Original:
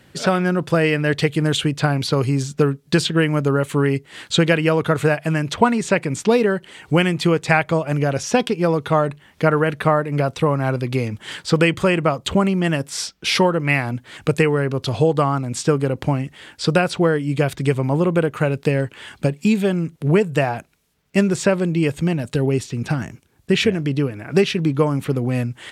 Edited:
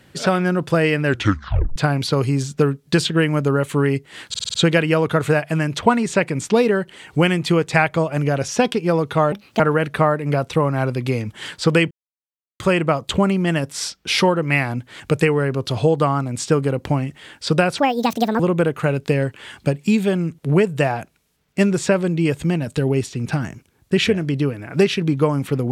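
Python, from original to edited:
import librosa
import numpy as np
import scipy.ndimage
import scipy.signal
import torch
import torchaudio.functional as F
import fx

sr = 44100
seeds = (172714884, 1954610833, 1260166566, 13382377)

y = fx.edit(x, sr, fx.tape_stop(start_s=1.05, length_s=0.71),
    fx.stutter(start_s=4.29, slice_s=0.05, count=6),
    fx.speed_span(start_s=9.07, length_s=0.39, speed=1.4),
    fx.insert_silence(at_s=11.77, length_s=0.69),
    fx.speed_span(start_s=16.95, length_s=1.02, speed=1.65), tone=tone)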